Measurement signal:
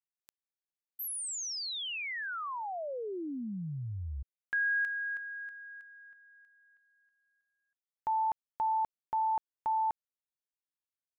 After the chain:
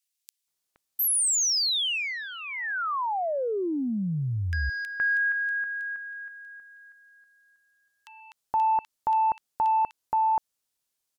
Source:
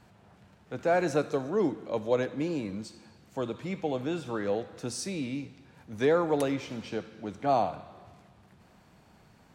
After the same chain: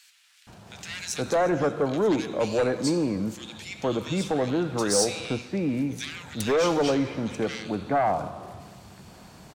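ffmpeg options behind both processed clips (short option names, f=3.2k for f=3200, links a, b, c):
-filter_complex "[0:a]equalizer=f=8.5k:w=0.34:g=6,asplit=2[a][b];[b]acompressor=threshold=-36dB:ratio=6:attack=8.7:release=103,volume=-1dB[c];[a][c]amix=inputs=2:normalize=0,aeval=exprs='0.282*sin(PI/2*2.51*val(0)/0.282)':c=same,acrossover=split=2000[d][e];[d]adelay=470[f];[f][e]amix=inputs=2:normalize=0,volume=-7dB"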